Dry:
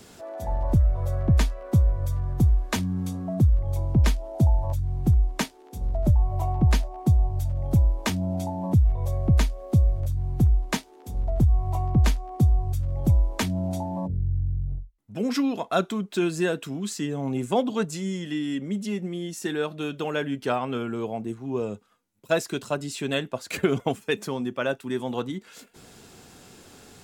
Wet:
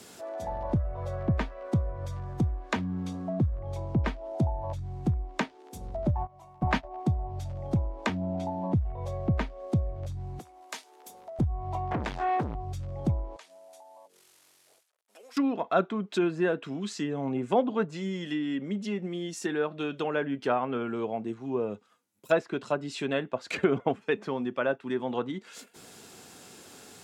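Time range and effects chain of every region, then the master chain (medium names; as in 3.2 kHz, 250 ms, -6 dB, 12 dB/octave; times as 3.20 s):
6.15–6.83 s: spectral peaks clipped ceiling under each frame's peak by 14 dB + gate -21 dBFS, range -22 dB + peaking EQ 440 Hz -9 dB 0.76 oct
10.39–11.39 s: high-pass 530 Hz + compression 2:1, threshold -42 dBFS
11.91–12.55 s: tone controls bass -8 dB, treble +4 dB + compression 3:1, threshold -33 dBFS + waveshaping leveller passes 5
13.36–15.37 s: CVSD coder 64 kbps + high-pass 500 Hz 24 dB/octave + compression 4:1, threshold -52 dBFS
whole clip: high-pass 230 Hz 6 dB/octave; low-pass that closes with the level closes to 1.9 kHz, closed at -25.5 dBFS; treble shelf 10 kHz +6.5 dB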